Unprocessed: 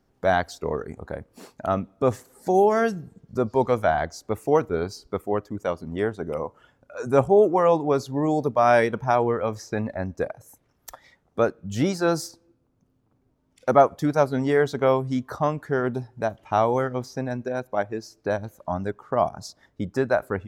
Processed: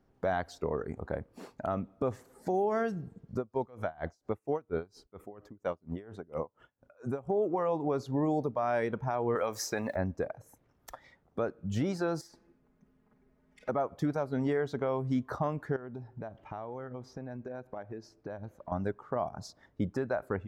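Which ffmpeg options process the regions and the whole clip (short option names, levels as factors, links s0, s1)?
-filter_complex "[0:a]asettb=1/sr,asplit=3[s0][s1][s2];[s0]atrim=end=3.374[s3];[s1]atrim=start=3.37:end=7.3,asetpts=PTS-STARTPTS,afade=t=in:d=0.004:c=qsin,afade=t=out:st=3.926:d=0.004:c=qsin,bandreject=f=4600:w=19,aeval=exprs='val(0)*pow(10,-28*(0.5-0.5*cos(2*PI*4.3*n/s))/20)':c=same[s4];[s2]atrim=start=7.296[s5];[s3][s4]acrossfade=d=0.004:c1=hsin:c2=qsin[s6];[s6][s5]acrossfade=d=0.004:c1=qsin:c2=hsin,asettb=1/sr,asplit=3[s7][s8][s9];[s7]atrim=end=9.354[s10];[s8]atrim=start=9.35:end=9.96,asetpts=PTS-STARTPTS,afade=t=in:d=0.004:c=qsin,afade=t=out:st=0.606:d=0.004:c=qsin,aemphasis=mode=production:type=riaa,acontrast=61[s11];[s9]atrim=start=9.956[s12];[s10][s11]acrossfade=d=0.004:c1=hsin:c2=qsin[s13];[s13][s12]acrossfade=d=0.004:c1=qsin:c2=hsin,asettb=1/sr,asplit=3[s14][s15][s16];[s14]atrim=end=12.214[s17];[s15]atrim=start=12.21:end=13.69,asetpts=PTS-STARTPTS,afade=t=in:d=0.004:c=qsin,afade=t=out:st=1.476:d=0.004:c=qsin,equalizer=f=1900:w=2:g=9.5,acompressor=threshold=0.00355:ratio=2.5:attack=3.2:release=140:knee=1:detection=peak,aecho=1:1:4.8:0.91,atrim=end_sample=65268[s18];[s16]atrim=start=13.686[s19];[s17][s18]acrossfade=d=0.004:c1=hsin:c2=qsin[s20];[s20][s19]acrossfade=d=0.004:c1=qsin:c2=hsin,asettb=1/sr,asplit=3[s21][s22][s23];[s21]atrim=end=15.764[s24];[s22]atrim=start=15.76:end=18.72,asetpts=PTS-STARTPTS,afade=t=in:d=0.004:c=qsin,afade=t=out:st=2.956:d=0.004:c=qsin,acompressor=threshold=0.0158:ratio=6:attack=3.2:release=140:knee=1:detection=peak,lowpass=f=3600:p=1[s25];[s23]atrim=start=18.716[s26];[s24][s25]acrossfade=d=0.004:c1=hsin:c2=qsin[s27];[s27][s26]acrossfade=d=0.004:c1=qsin:c2=hsin,highshelf=f=3600:g=-10.5,acompressor=threshold=0.0891:ratio=3,alimiter=limit=0.106:level=0:latency=1:release=233,volume=0.841"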